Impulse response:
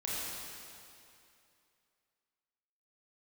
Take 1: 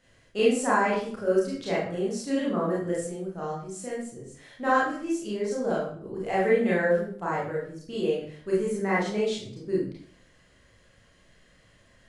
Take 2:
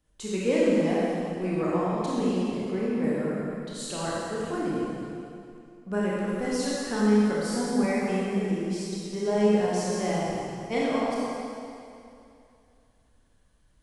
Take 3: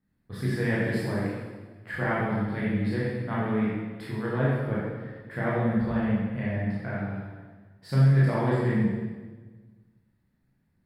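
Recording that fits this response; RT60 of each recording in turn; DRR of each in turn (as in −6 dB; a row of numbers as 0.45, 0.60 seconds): 2; 0.55, 2.6, 1.4 seconds; −7.0, −7.5, −8.0 decibels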